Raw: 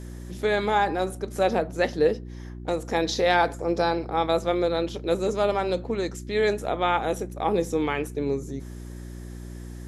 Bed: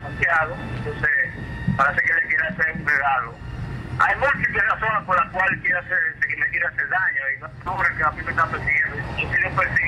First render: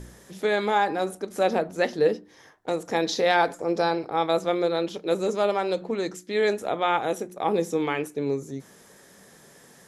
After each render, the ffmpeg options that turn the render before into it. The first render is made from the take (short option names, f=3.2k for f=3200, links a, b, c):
-af "bandreject=f=60:t=h:w=4,bandreject=f=120:t=h:w=4,bandreject=f=180:t=h:w=4,bandreject=f=240:t=h:w=4,bandreject=f=300:t=h:w=4,bandreject=f=360:t=h:w=4"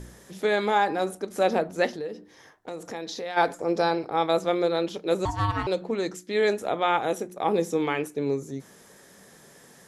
-filter_complex "[0:a]asplit=3[a][b][c];[a]afade=t=out:st=1.91:d=0.02[d];[b]acompressor=threshold=-34dB:ratio=3:attack=3.2:release=140:knee=1:detection=peak,afade=t=in:st=1.91:d=0.02,afade=t=out:st=3.36:d=0.02[e];[c]afade=t=in:st=3.36:d=0.02[f];[d][e][f]amix=inputs=3:normalize=0,asettb=1/sr,asplit=3[g][h][i];[g]atrim=end=5.254[j];[h]atrim=start=5.25:end=5.67,asetpts=PTS-STARTPTS,afade=t=in:d=0.004:c=qsin,afade=t=out:st=0.416:d=0.004:c=qsin,aeval=exprs='val(0)*sin(2*PI*510*n/s)':c=same[k];[i]atrim=start=5.666[l];[j][k]acrossfade=d=0.004:c1=hsin:c2=qsin[m];[m][l]acrossfade=d=0.004:c1=qsin:c2=hsin"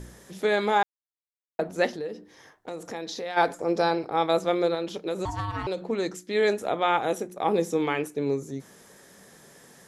-filter_complex "[0:a]asettb=1/sr,asplit=3[a][b][c];[a]atrim=end=4.744[d];[b]atrim=start=4.74:end=5.8,asetpts=PTS-STARTPTS,afade=t=in:d=0.004:c=qsin,afade=t=out:st=1.056:d=0.004:c=qsin,acompressor=threshold=-25dB:ratio=6:attack=3.2:release=140:knee=1:detection=peak[e];[c]atrim=start=5.796[f];[d][e]acrossfade=d=0.004:c1=hsin:c2=qsin[g];[g][f]acrossfade=d=0.004:c1=qsin:c2=hsin,asplit=3[h][i][j];[h]atrim=end=0.83,asetpts=PTS-STARTPTS,afade=t=out:st=0.826:d=0.004:c=hsin[k];[i]atrim=start=0.83:end=1.59,asetpts=PTS-STARTPTS,volume=0[l];[j]atrim=start=1.59,asetpts=PTS-STARTPTS,afade=t=in:d=0.004:c=hsin[m];[k][l][m]concat=n=3:v=0:a=1"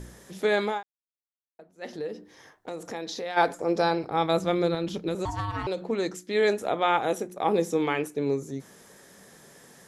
-filter_complex "[0:a]asettb=1/sr,asplit=3[a][b][c];[a]atrim=end=3.684[d];[b]atrim=start=3.68:end=5.15,asetpts=PTS-STARTPTS,afade=t=in:d=0.004:c=qsin,afade=t=out:st=1.466:d=0.004:c=qsin,asubboost=boost=9.5:cutoff=240[e];[c]atrim=start=5.146[f];[d][e]acrossfade=d=0.004:c1=hsin:c2=qsin[g];[g][f]acrossfade=d=0.004:c1=qsin:c2=hsin,asplit=3[h][i][j];[h]atrim=end=0.82,asetpts=PTS-STARTPTS,afade=t=out:st=0.62:d=0.2:silence=0.0749894[k];[i]atrim=start=0.82:end=1.81,asetpts=PTS-STARTPTS,volume=-22.5dB[l];[j]atrim=start=1.81,asetpts=PTS-STARTPTS,afade=t=in:d=0.2:silence=0.0749894[m];[k][l][m]concat=n=3:v=0:a=1"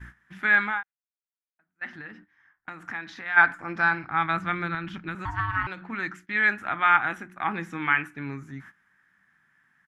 -af "agate=range=-17dB:threshold=-44dB:ratio=16:detection=peak,firequalizer=gain_entry='entry(110,0);entry(320,-7);entry(460,-24);entry(770,-5);entry(1500,14);entry(4000,-11);entry(6700,-16)':delay=0.05:min_phase=1"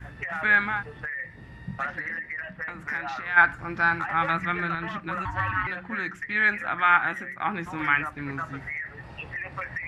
-filter_complex "[1:a]volume=-14dB[a];[0:a][a]amix=inputs=2:normalize=0"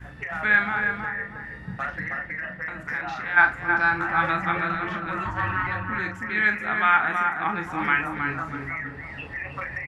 -filter_complex "[0:a]asplit=2[a][b];[b]adelay=38,volume=-8dB[c];[a][c]amix=inputs=2:normalize=0,asplit=2[d][e];[e]adelay=319,lowpass=f=1.5k:p=1,volume=-3dB,asplit=2[f][g];[g]adelay=319,lowpass=f=1.5k:p=1,volume=0.38,asplit=2[h][i];[i]adelay=319,lowpass=f=1.5k:p=1,volume=0.38,asplit=2[j][k];[k]adelay=319,lowpass=f=1.5k:p=1,volume=0.38,asplit=2[l][m];[m]adelay=319,lowpass=f=1.5k:p=1,volume=0.38[n];[f][h][j][l][n]amix=inputs=5:normalize=0[o];[d][o]amix=inputs=2:normalize=0"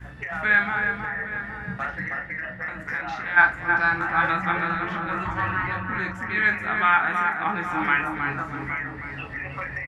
-filter_complex "[0:a]asplit=2[a][b];[b]adelay=16,volume=-11dB[c];[a][c]amix=inputs=2:normalize=0,asplit=2[d][e];[e]adelay=816.3,volume=-10dB,highshelf=f=4k:g=-18.4[f];[d][f]amix=inputs=2:normalize=0"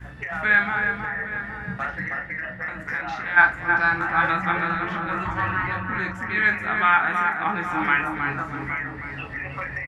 -af "volume=1dB"